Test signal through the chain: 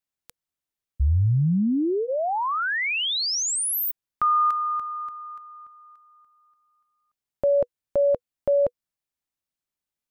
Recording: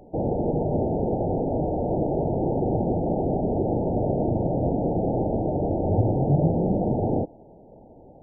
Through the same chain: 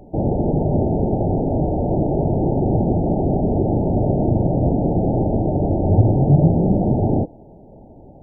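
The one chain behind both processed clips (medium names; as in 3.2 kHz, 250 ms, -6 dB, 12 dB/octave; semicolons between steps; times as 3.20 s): bass shelf 260 Hz +7 dB; band-stop 490 Hz, Q 12; trim +2.5 dB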